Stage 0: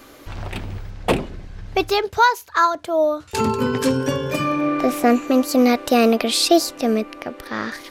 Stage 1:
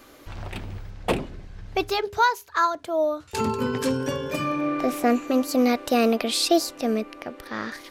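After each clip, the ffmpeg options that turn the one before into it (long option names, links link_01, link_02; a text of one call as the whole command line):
ffmpeg -i in.wav -af "bandreject=frequency=135.9:width_type=h:width=4,bandreject=frequency=271.8:width_type=h:width=4,bandreject=frequency=407.7:width_type=h:width=4,volume=-5dB" out.wav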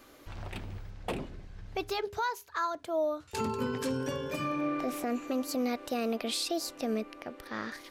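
ffmpeg -i in.wav -af "alimiter=limit=-17dB:level=0:latency=1:release=102,volume=-6dB" out.wav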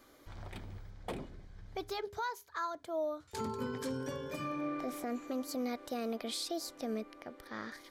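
ffmpeg -i in.wav -af "bandreject=frequency=2700:width=6.6,volume=-5.5dB" out.wav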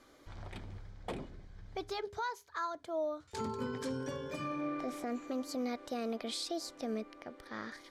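ffmpeg -i in.wav -af "lowpass=9000" out.wav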